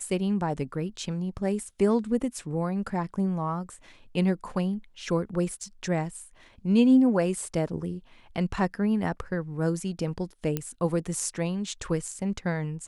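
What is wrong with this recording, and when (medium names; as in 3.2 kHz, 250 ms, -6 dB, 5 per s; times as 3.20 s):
10.57 s: pop -14 dBFS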